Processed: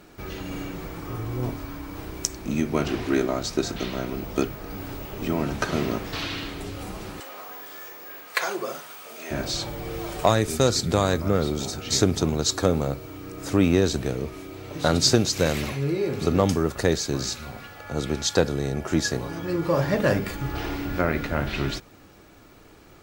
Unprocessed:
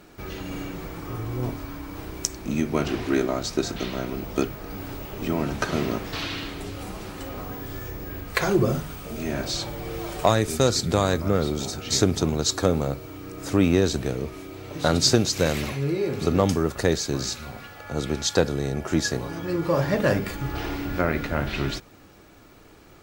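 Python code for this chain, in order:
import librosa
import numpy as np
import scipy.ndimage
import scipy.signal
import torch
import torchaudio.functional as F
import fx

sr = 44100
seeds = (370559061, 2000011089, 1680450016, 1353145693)

y = fx.highpass(x, sr, hz=660.0, slope=12, at=(7.2, 9.31))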